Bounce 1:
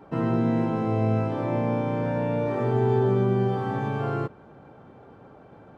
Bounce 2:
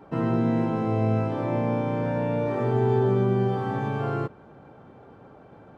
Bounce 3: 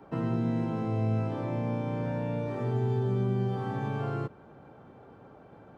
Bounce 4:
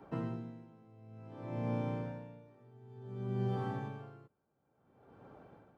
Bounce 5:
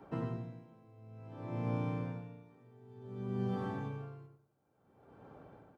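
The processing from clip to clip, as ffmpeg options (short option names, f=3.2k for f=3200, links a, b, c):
-af anull
-filter_complex "[0:a]acrossover=split=220|3000[a][b][c];[b]acompressor=threshold=-30dB:ratio=6[d];[a][d][c]amix=inputs=3:normalize=0,volume=-3dB"
-af "aeval=exprs='val(0)*pow(10,-26*(0.5-0.5*cos(2*PI*0.56*n/s))/20)':c=same,volume=-3.5dB"
-filter_complex "[0:a]asplit=2[a][b];[b]adelay=93,lowpass=f=1.6k:p=1,volume=-5dB,asplit=2[c][d];[d]adelay=93,lowpass=f=1.6k:p=1,volume=0.3,asplit=2[e][f];[f]adelay=93,lowpass=f=1.6k:p=1,volume=0.3,asplit=2[g][h];[h]adelay=93,lowpass=f=1.6k:p=1,volume=0.3[i];[a][c][e][g][i]amix=inputs=5:normalize=0"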